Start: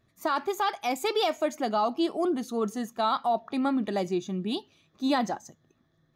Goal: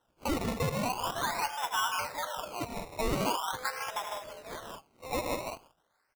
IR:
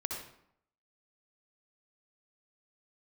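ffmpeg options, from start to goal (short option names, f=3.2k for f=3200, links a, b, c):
-filter_complex "[0:a]asplit=2[a][b];[b]asetrate=33038,aresample=44100,atempo=1.33484,volume=-7dB[c];[a][c]amix=inputs=2:normalize=0,equalizer=f=1.2k:w=1.2:g=7.5,afreqshift=250,highshelf=f=5.9k:g=-8.5,aecho=1:1:78|82|106|144|153|201:0.251|0.133|0.266|0.133|0.501|0.335,acompressor=threshold=-25dB:ratio=2.5,highpass=f=800:w=0.5412,highpass=f=800:w=1.3066,acrusher=samples=19:mix=1:aa=0.000001:lfo=1:lforange=19:lforate=0.43,volume=-3.5dB"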